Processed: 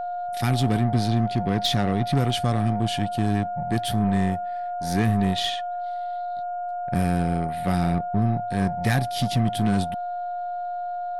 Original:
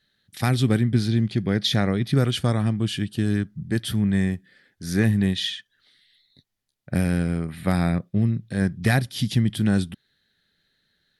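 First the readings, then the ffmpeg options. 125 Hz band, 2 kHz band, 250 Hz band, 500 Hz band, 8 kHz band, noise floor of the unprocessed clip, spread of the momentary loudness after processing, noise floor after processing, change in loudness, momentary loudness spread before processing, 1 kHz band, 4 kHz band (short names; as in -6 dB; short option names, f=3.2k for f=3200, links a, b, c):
-1.5 dB, -2.5 dB, -1.5 dB, +3.0 dB, -0.5 dB, -74 dBFS, 8 LU, -30 dBFS, -1.5 dB, 7 LU, +12.0 dB, -0.5 dB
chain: -af "asoftclip=type=tanh:threshold=-13dB,aeval=exprs='val(0)+0.0447*sin(2*PI*710*n/s)':c=same,aeval=exprs='0.266*(cos(1*acos(clip(val(0)/0.266,-1,1)))-cos(1*PI/2))+0.0168*(cos(6*acos(clip(val(0)/0.266,-1,1)))-cos(6*PI/2))':c=same"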